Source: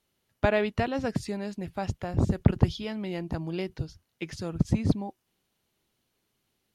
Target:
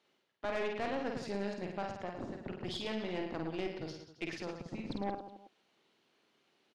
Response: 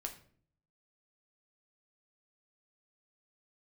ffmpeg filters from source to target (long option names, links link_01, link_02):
-af "areverse,acompressor=threshold=-38dB:ratio=6,areverse,highpass=280,lowpass=4100,aecho=1:1:50|110|182|268.4|372.1:0.631|0.398|0.251|0.158|0.1,aeval=exprs='(tanh(70.8*val(0)+0.6)-tanh(0.6))/70.8':channel_layout=same,volume=7.5dB"